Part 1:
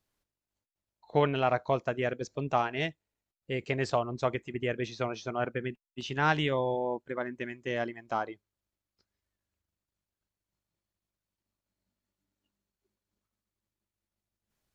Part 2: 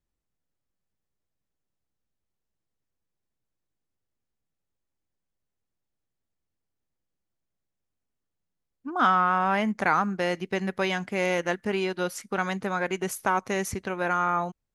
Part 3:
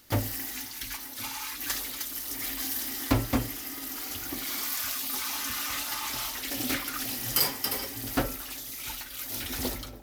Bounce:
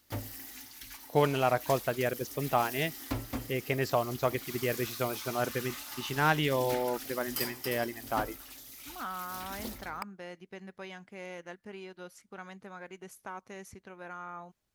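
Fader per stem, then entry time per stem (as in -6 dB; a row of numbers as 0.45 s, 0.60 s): 0.0 dB, -17.5 dB, -10.0 dB; 0.00 s, 0.00 s, 0.00 s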